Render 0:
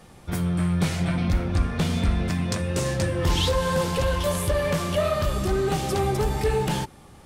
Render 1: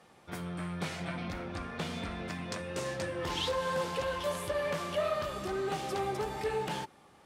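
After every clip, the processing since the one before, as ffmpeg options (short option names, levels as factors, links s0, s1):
-af "highpass=f=490:p=1,aemphasis=mode=reproduction:type=cd,volume=0.531"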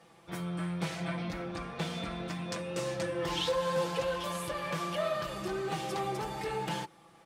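-af "aecho=1:1:6:0.7,volume=0.891"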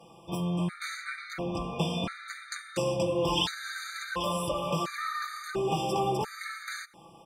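-af "afftfilt=real='re*gt(sin(2*PI*0.72*pts/sr)*(1-2*mod(floor(b*sr/1024/1200),2)),0)':imag='im*gt(sin(2*PI*0.72*pts/sr)*(1-2*mod(floor(b*sr/1024/1200),2)),0)':win_size=1024:overlap=0.75,volume=2.11"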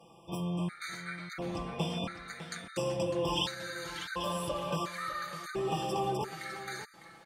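-af "aecho=1:1:603:0.224,volume=0.631"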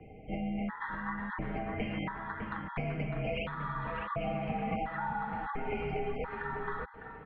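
-filter_complex "[0:a]highpass=f=160:t=q:w=0.5412,highpass=f=160:t=q:w=1.307,lowpass=f=2600:t=q:w=0.5176,lowpass=f=2600:t=q:w=0.7071,lowpass=f=2600:t=q:w=1.932,afreqshift=-380,acrossover=split=250|770[s0][s1][s2];[s0]acompressor=threshold=0.00501:ratio=4[s3];[s1]acompressor=threshold=0.00447:ratio=4[s4];[s2]acompressor=threshold=0.00562:ratio=4[s5];[s3][s4][s5]amix=inputs=3:normalize=0,volume=2.37"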